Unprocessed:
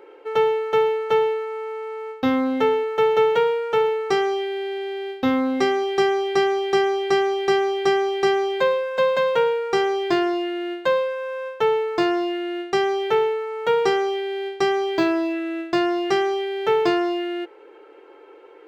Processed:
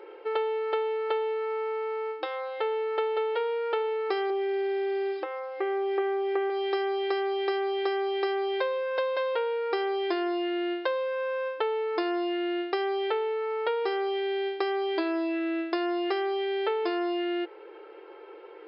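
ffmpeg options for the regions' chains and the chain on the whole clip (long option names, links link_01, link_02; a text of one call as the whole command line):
ffmpeg -i in.wav -filter_complex "[0:a]asettb=1/sr,asplit=3[link_01][link_02][link_03];[link_01]atrim=end=4.304[link_04];[link_02]atrim=start=4.3:end=6.5,asetpts=PTS-STARTPTS,afade=type=in:duration=0.004:curve=qsin,afade=type=out:start_time=2.196:duration=0.004:curve=qsin,asuperstop=centerf=4900:order=4:qfactor=0.78,lowshelf=frequency=260:gain=8,acrusher=bits=6:mix=0:aa=0.5[link_05];[link_03]atrim=start=6.496[link_06];[link_04][link_05]acrossfade=duration=0.004:curve1=hsin:curve2=qsin[link_07];[link_07][link_06]acrossfade=duration=0.004:curve1=qsin:curve2=hsin,acompressor=threshold=-26dB:ratio=6,afftfilt=real='re*between(b*sr/4096,310,5400)':imag='im*between(b*sr/4096,310,5400)':win_size=4096:overlap=0.75" out.wav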